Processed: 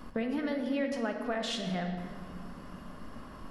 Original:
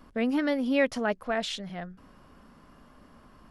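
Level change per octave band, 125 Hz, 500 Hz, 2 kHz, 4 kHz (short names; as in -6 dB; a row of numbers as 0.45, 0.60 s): +5.0, -5.0, -6.5, -2.0 dB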